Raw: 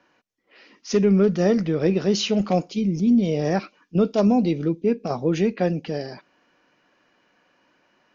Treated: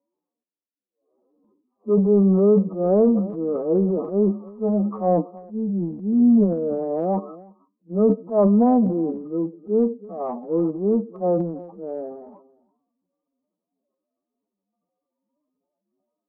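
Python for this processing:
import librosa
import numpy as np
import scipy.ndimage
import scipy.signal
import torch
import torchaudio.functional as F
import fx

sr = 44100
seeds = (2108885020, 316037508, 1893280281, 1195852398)

y = fx.block_float(x, sr, bits=7)
y = y + 10.0 ** (-21.0 / 20.0) * np.pad(y, (int(166 * sr / 1000.0), 0))[:len(y)]
y = fx.dynamic_eq(y, sr, hz=580.0, q=1.6, threshold_db=-30.0, ratio=4.0, max_db=3)
y = fx.noise_reduce_blind(y, sr, reduce_db=13)
y = fx.env_lowpass(y, sr, base_hz=480.0, full_db=-12.5)
y = fx.brickwall_bandpass(y, sr, low_hz=170.0, high_hz=1300.0)
y = fx.stretch_vocoder(y, sr, factor=2.0)
y = fx.transient(y, sr, attack_db=-4, sustain_db=8)
y = fx.upward_expand(y, sr, threshold_db=-29.0, expansion=1.5)
y = y * librosa.db_to_amplitude(1.5)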